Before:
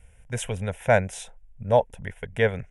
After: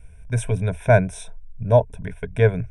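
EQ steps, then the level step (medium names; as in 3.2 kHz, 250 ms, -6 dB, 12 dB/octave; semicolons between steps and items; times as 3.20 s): rippled EQ curve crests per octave 1.6, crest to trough 11 dB; dynamic bell 3.8 kHz, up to -5 dB, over -39 dBFS, Q 0.72; bass shelf 350 Hz +8.5 dB; -1.0 dB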